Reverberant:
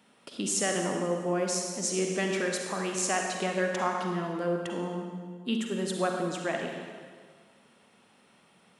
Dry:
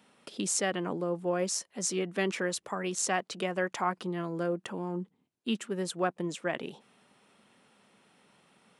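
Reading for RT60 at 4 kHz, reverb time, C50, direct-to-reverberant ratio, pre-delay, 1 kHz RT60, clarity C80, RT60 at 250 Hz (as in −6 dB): 1.5 s, 1.7 s, 2.0 dB, 1.5 dB, 39 ms, 1.7 s, 3.5 dB, 1.8 s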